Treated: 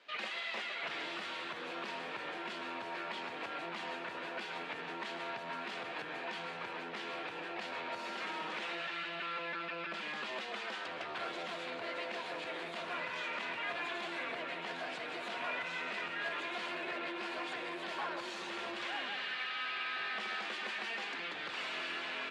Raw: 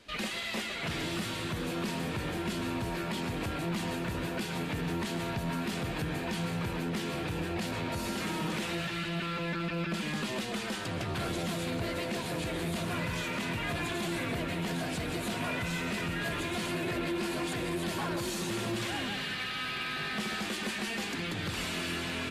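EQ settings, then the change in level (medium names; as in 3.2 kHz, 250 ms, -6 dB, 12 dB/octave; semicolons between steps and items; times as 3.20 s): band-pass 600–3300 Hz; -1.5 dB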